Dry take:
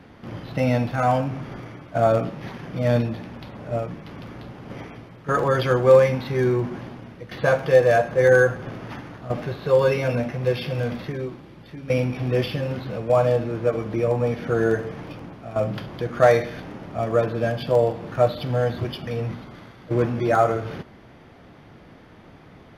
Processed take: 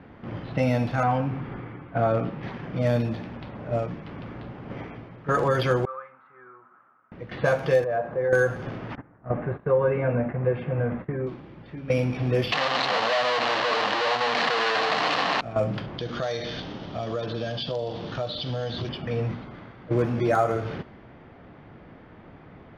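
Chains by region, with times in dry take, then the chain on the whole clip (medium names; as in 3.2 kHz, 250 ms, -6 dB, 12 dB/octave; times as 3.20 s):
1.03–2.43 s: low-pass 3 kHz + band-stop 620 Hz, Q 5.5
5.85–7.12 s: band-pass filter 1.3 kHz, Q 13 + distance through air 210 m
7.84–8.33 s: low-pass 1.1 kHz + compression 2:1, threshold -23 dBFS + tilt EQ +2 dB/octave
8.95–11.27 s: low-pass 1.9 kHz 24 dB/octave + gate -36 dBFS, range -16 dB
12.52–15.41 s: one-bit comparator + cabinet simulation 360–5100 Hz, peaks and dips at 360 Hz -8 dB, 740 Hz +7 dB, 1.1 kHz +8 dB, 1.8 kHz +6 dB, 2.9 kHz +6 dB, 4.2 kHz +7 dB
15.98–18.89 s: high-order bell 4.4 kHz +15.5 dB 1.3 oct + compression 5:1, threshold -26 dBFS
whole clip: level-controlled noise filter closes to 2.3 kHz, open at -15.5 dBFS; compression 2.5:1, threshold -19 dBFS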